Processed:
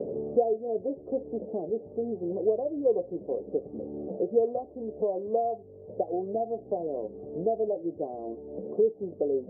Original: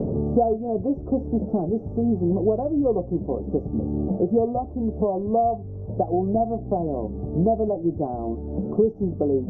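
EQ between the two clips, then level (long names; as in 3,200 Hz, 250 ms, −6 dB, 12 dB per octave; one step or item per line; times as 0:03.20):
resonant band-pass 500 Hz, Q 2.9
high-frequency loss of the air 400 metres
0.0 dB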